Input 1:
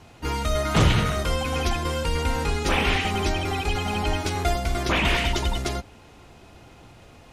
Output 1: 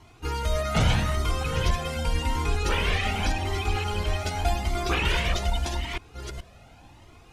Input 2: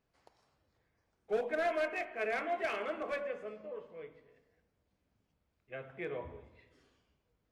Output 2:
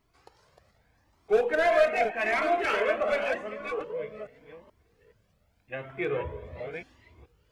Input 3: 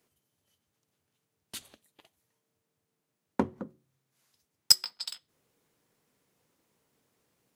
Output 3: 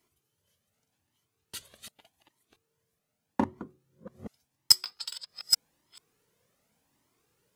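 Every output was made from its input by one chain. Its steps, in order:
reverse delay 0.427 s, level -6 dB; cascading flanger rising 0.85 Hz; match loudness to -27 LUFS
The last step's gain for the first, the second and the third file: 0.0, +14.0, +4.5 dB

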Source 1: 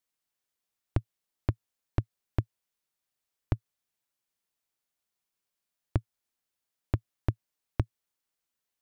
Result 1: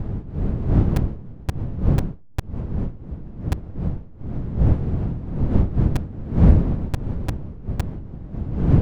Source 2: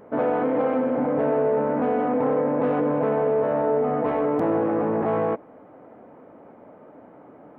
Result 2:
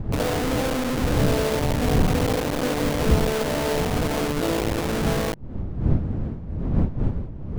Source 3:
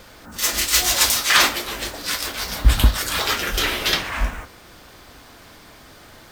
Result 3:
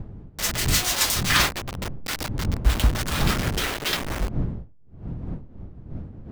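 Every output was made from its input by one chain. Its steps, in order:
level-crossing sampler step -18 dBFS; wind noise 140 Hz -25 dBFS; match loudness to -24 LUFS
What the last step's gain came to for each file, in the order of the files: +4.0, -0.5, -5.0 dB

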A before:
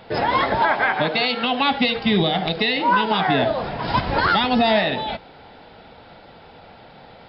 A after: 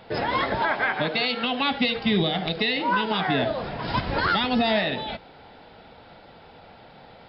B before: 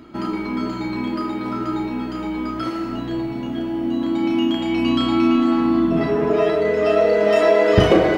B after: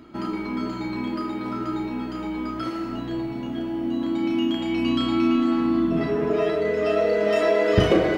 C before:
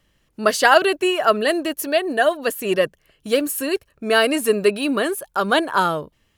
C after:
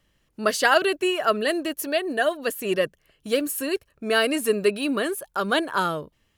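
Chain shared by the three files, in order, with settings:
dynamic EQ 840 Hz, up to -4 dB, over -31 dBFS, Q 1.8; match loudness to -24 LUFS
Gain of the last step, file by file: -3.5, -3.5, -3.5 dB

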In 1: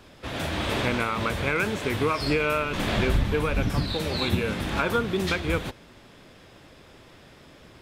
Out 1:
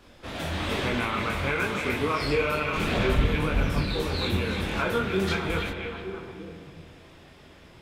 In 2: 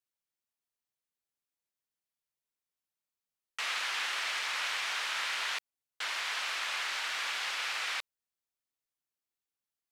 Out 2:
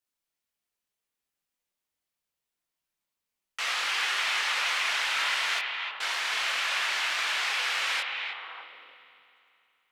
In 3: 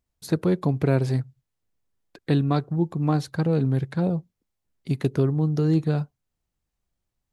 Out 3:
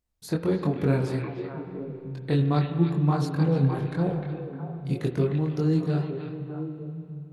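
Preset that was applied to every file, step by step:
chorus voices 4, 1.2 Hz, delay 23 ms, depth 3 ms; delay with a stepping band-pass 0.304 s, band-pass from 2500 Hz, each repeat -1.4 oct, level -2.5 dB; spring tank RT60 2.7 s, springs 36/48 ms, chirp 50 ms, DRR 7.5 dB; match loudness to -27 LUFS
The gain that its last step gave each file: +0.5, +7.5, +0.5 dB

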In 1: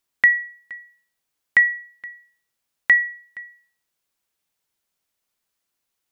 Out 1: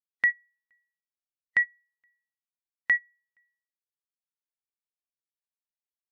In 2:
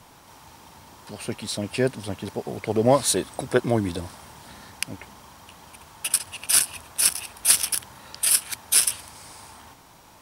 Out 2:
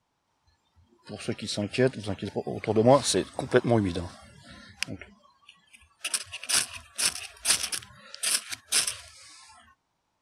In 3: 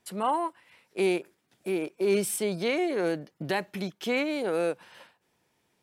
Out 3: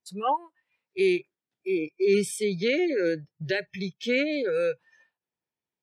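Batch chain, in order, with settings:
spectral noise reduction 24 dB; LPF 7100 Hz 12 dB/oct; match loudness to -27 LUFS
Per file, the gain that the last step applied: -8.5, -0.5, +3.0 dB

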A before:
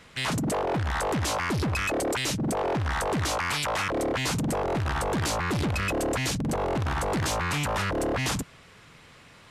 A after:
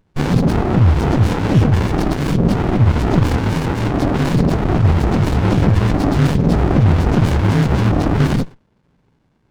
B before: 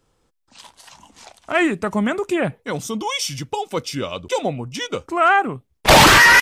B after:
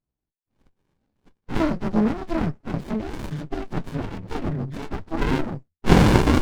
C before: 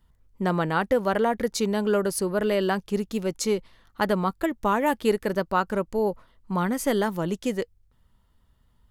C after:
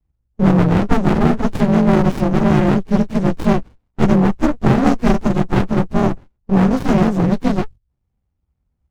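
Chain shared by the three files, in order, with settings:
inharmonic rescaling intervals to 84%; low shelf 440 Hz +5 dB; gate -41 dBFS, range -20 dB; running maximum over 65 samples; normalise peaks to -1.5 dBFS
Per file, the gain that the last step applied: +14.5, -0.5, +12.0 dB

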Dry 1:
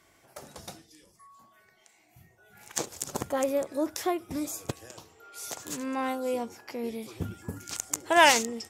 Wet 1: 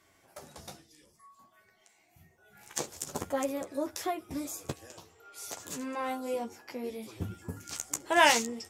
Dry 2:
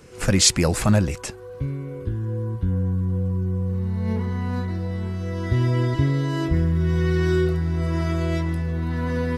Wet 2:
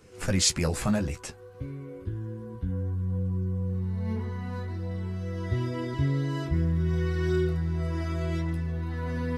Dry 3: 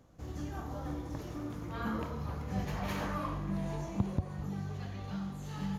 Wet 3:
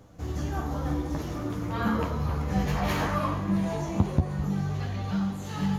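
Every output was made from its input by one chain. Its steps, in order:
flange 0.56 Hz, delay 9.6 ms, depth 5.2 ms, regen -22%; normalise peaks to -9 dBFS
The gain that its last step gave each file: +0.5, -3.5, +12.5 dB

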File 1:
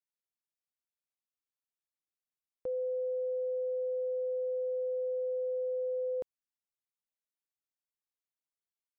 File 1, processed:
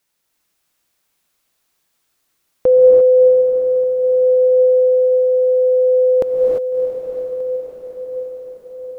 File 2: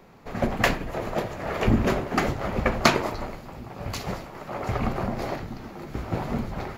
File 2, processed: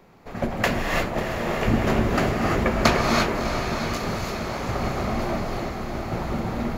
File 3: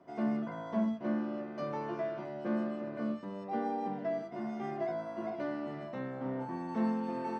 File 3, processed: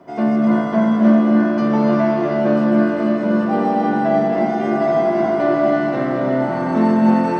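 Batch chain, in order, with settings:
diffused feedback echo 0.68 s, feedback 61%, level -7 dB; non-linear reverb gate 0.37 s rising, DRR -0.5 dB; normalise peaks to -3 dBFS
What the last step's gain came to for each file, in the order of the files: +23.0, -1.5, +14.5 dB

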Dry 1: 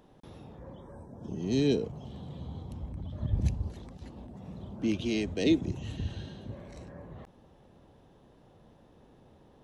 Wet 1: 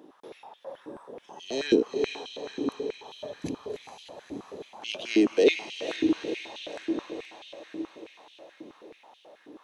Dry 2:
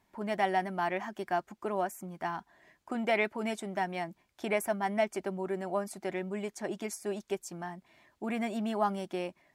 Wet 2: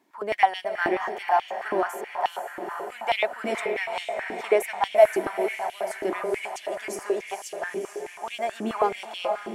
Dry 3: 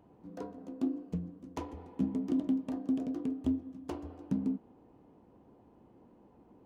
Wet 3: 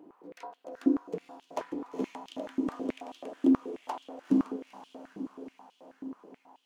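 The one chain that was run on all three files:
diffused feedback echo 0.465 s, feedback 63%, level -6 dB; stepped high-pass 9.3 Hz 310–3100 Hz; gain +2.5 dB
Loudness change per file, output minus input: +3.5, +7.0, +3.0 LU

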